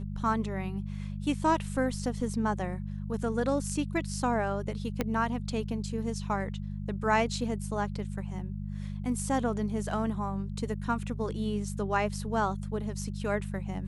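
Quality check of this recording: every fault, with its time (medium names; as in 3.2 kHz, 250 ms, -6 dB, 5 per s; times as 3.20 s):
hum 50 Hz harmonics 4 -36 dBFS
5.01 s: pop -14 dBFS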